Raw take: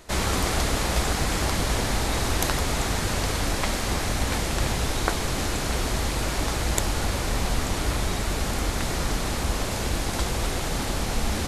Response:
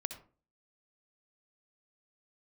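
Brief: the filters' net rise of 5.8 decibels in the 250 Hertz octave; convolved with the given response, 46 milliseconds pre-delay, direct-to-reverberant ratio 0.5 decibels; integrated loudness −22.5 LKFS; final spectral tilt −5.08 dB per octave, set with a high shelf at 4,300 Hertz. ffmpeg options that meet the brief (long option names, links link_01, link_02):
-filter_complex "[0:a]equalizer=frequency=250:width_type=o:gain=7.5,highshelf=frequency=4300:gain=-6.5,asplit=2[link_01][link_02];[1:a]atrim=start_sample=2205,adelay=46[link_03];[link_02][link_03]afir=irnorm=-1:irlink=0,volume=0dB[link_04];[link_01][link_04]amix=inputs=2:normalize=0"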